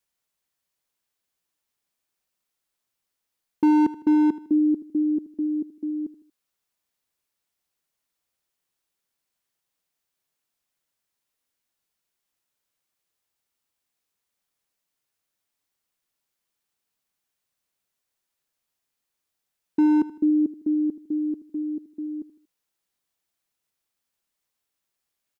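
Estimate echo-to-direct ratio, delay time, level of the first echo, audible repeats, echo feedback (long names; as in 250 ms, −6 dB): −15.5 dB, 78 ms, −16.0 dB, 3, 39%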